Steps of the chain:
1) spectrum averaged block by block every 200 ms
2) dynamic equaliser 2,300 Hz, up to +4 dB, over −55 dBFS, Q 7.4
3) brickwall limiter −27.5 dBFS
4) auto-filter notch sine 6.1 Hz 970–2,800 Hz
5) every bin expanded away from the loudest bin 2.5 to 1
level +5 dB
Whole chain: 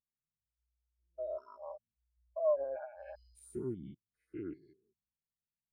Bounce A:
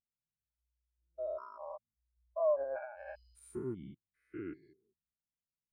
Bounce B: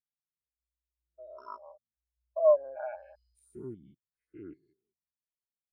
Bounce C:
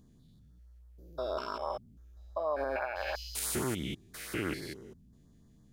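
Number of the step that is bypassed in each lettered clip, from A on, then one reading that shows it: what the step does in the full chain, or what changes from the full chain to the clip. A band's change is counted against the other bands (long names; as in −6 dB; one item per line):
4, 2 kHz band +8.0 dB
3, change in crest factor +2.0 dB
5, 2 kHz band +14.0 dB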